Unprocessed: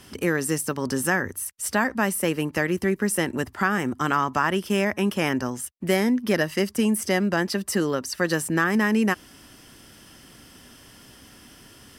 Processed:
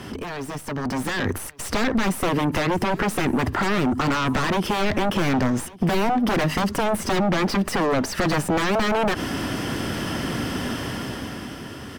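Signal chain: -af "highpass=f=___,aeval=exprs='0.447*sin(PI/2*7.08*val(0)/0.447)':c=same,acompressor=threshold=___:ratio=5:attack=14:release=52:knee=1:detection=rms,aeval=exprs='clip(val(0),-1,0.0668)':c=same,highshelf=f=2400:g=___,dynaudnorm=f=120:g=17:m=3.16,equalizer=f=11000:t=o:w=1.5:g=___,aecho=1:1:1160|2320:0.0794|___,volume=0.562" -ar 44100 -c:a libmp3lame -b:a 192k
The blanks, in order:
68, 0.0631, -9.5, -6, 0.0278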